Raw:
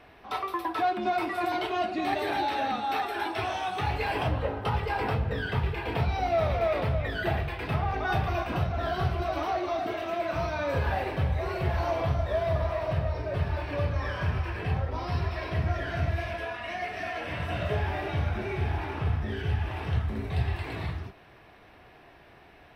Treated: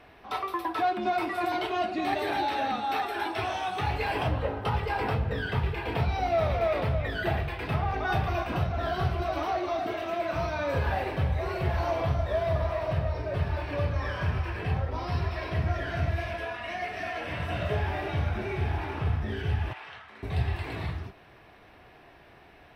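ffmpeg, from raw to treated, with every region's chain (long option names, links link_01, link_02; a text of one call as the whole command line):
ffmpeg -i in.wav -filter_complex "[0:a]asettb=1/sr,asplit=3[link_01][link_02][link_03];[link_01]atrim=end=19.734[link_04];[link_02]atrim=start=19.73:end=20.23,asetpts=PTS-STARTPTS,afade=type=in:duration=0.004:curve=qsin,afade=type=out:start_time=0.496:duration=0.004:curve=qsin,highpass=1200,aemphasis=mode=reproduction:type=bsi[link_05];[link_03]atrim=start=20.226[link_06];[link_04][link_05]acrossfade=duration=0.004:curve1=hsin:curve2=qsin[link_07];[link_07][link_06]acrossfade=duration=0.004:curve1=qsin:curve2=hsin" out.wav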